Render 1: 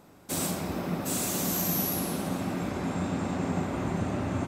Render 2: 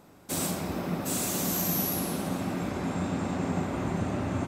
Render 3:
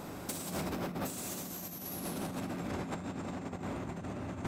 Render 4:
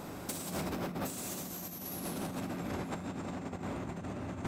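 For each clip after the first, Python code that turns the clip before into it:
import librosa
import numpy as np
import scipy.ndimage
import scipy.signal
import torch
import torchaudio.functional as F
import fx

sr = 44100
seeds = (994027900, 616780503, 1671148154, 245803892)

y1 = x
y2 = fx.over_compress(y1, sr, threshold_db=-37.0, ratio=-0.5)
y2 = 10.0 ** (-33.0 / 20.0) * np.tanh(y2 / 10.0 ** (-33.0 / 20.0))
y2 = y2 * 10.0 ** (2.5 / 20.0)
y3 = y2 + 10.0 ** (-22.0 / 20.0) * np.pad(y2, (int(798 * sr / 1000.0), 0))[:len(y2)]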